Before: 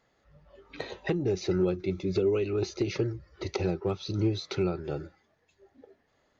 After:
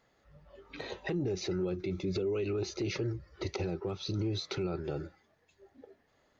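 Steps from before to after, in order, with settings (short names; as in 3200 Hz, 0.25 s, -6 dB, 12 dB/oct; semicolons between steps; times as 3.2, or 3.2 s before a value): limiter -25.5 dBFS, peak gain reduction 8 dB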